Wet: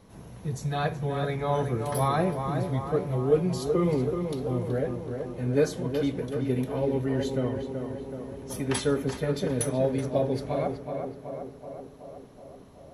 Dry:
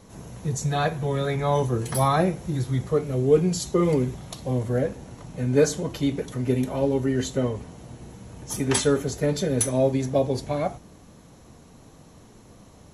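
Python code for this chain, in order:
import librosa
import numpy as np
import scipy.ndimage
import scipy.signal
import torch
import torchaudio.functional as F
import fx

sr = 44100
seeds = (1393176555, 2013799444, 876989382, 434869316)

y = fx.peak_eq(x, sr, hz=7100.0, db=-10.0, octaves=0.61)
y = fx.echo_tape(y, sr, ms=376, feedback_pct=72, wet_db=-5, lp_hz=1900.0, drive_db=6.0, wow_cents=21)
y = F.gain(torch.from_numpy(y), -4.5).numpy()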